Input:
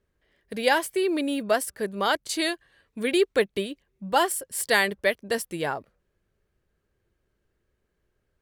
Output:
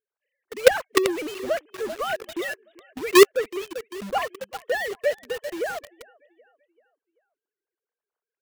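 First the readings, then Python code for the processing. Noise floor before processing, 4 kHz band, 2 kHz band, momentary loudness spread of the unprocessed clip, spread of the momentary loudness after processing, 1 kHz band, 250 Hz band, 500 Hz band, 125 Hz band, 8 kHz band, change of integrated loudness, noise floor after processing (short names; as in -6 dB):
-76 dBFS, -1.0 dB, -1.0 dB, 11 LU, 17 LU, -1.5 dB, 0.0 dB, +4.0 dB, n/a, -1.0 dB, +1.5 dB, under -85 dBFS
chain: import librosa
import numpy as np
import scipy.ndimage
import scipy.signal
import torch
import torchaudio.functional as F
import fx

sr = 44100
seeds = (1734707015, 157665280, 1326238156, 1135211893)

p1 = fx.sine_speech(x, sr)
p2 = fx.echo_feedback(p1, sr, ms=387, feedback_pct=43, wet_db=-16.5)
p3 = fx.quant_companded(p2, sr, bits=2)
p4 = p2 + F.gain(torch.from_numpy(p3), -4.0).numpy()
p5 = fx.hpss(p4, sr, part='percussive', gain_db=6)
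y = F.gain(torch.from_numpy(p5), -7.0).numpy()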